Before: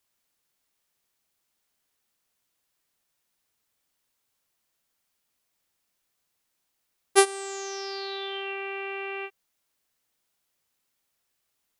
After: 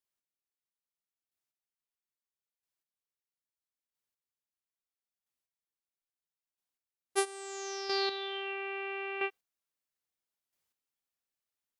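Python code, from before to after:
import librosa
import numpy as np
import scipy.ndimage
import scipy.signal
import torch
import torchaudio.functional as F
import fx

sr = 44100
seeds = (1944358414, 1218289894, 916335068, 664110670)

y = fx.noise_reduce_blind(x, sr, reduce_db=11)
y = fx.rider(y, sr, range_db=4, speed_s=0.5)
y = fx.chopper(y, sr, hz=0.76, depth_pct=60, duty_pct=15)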